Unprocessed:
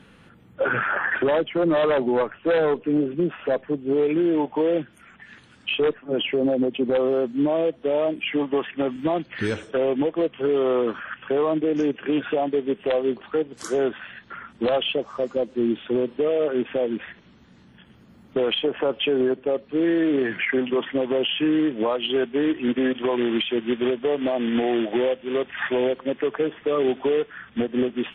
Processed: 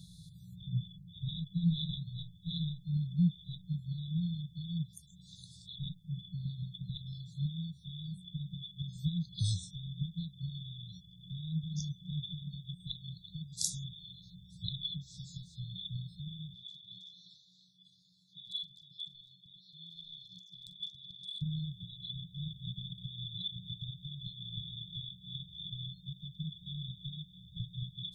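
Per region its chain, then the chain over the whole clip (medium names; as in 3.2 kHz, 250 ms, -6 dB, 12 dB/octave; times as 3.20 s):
16.54–21.42 s: band-pass 630–3700 Hz + transient shaper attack +1 dB, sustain +8 dB + doubling 44 ms -14 dB
whole clip: dynamic bell 5.7 kHz, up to -4 dB, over -42 dBFS, Q 0.82; FFT band-reject 190–3400 Hz; bass shelf 150 Hz -7.5 dB; trim +7.5 dB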